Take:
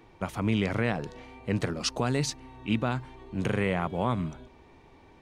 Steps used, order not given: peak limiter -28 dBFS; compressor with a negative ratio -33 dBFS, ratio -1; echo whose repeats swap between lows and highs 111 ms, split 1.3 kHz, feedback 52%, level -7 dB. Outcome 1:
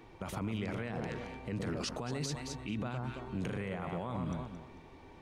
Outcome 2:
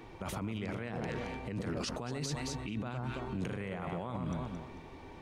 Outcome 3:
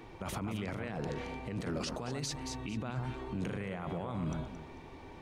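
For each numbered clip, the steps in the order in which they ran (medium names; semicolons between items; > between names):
echo whose repeats swap between lows and highs > peak limiter > compressor with a negative ratio; echo whose repeats swap between lows and highs > compressor with a negative ratio > peak limiter; compressor with a negative ratio > echo whose repeats swap between lows and highs > peak limiter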